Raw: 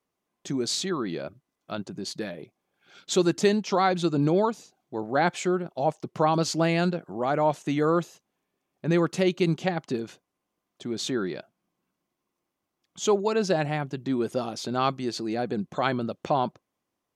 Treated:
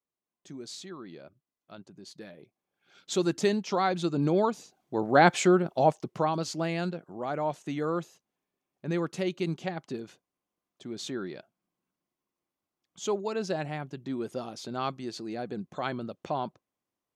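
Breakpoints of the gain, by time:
1.98 s -14 dB
3.3 s -4 dB
4.15 s -4 dB
5.18 s +4 dB
5.78 s +4 dB
6.38 s -7 dB

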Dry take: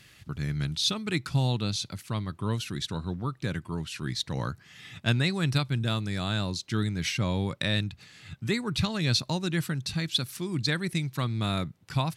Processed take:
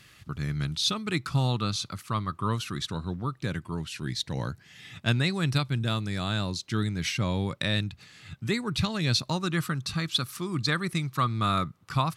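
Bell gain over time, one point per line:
bell 1200 Hz 0.36 oct
+6 dB
from 1.28 s +14 dB
from 2.9 s +2.5 dB
from 3.91 s -5.5 dB
from 4.9 s +2.5 dB
from 9.31 s +14 dB

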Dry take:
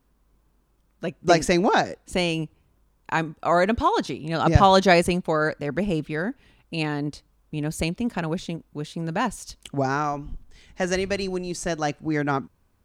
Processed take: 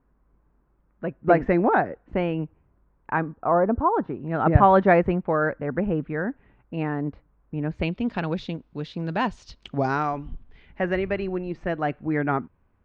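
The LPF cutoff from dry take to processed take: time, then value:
LPF 24 dB/oct
3.14 s 1900 Hz
3.69 s 1100 Hz
4.4 s 1900 Hz
7.6 s 1900 Hz
8.08 s 4400 Hz
9.95 s 4400 Hz
10.88 s 2400 Hz

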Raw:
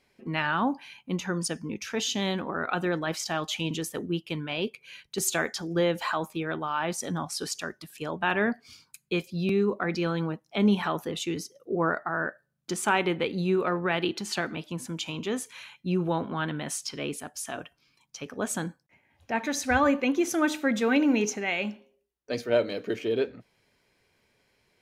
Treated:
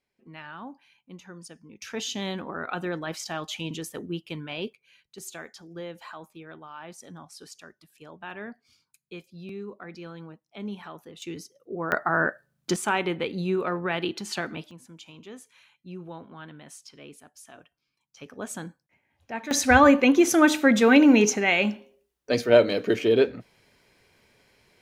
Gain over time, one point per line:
-14.5 dB
from 1.82 s -3 dB
from 4.73 s -13 dB
from 11.22 s -5.5 dB
from 11.92 s +6 dB
from 12.76 s -1 dB
from 14.71 s -13 dB
from 18.17 s -5 dB
from 19.51 s +7 dB

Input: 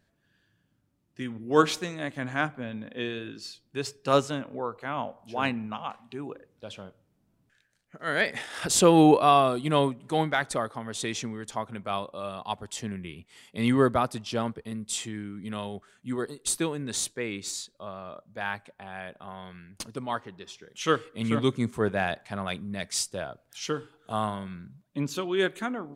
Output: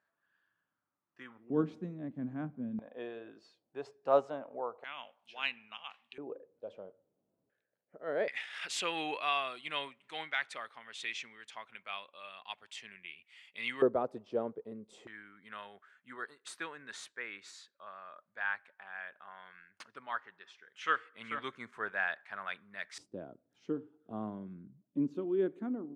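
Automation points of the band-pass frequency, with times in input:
band-pass, Q 2.3
1200 Hz
from 1.5 s 220 Hz
from 2.79 s 690 Hz
from 4.84 s 2800 Hz
from 6.18 s 510 Hz
from 8.28 s 2400 Hz
from 13.82 s 460 Hz
from 15.07 s 1600 Hz
from 22.98 s 290 Hz

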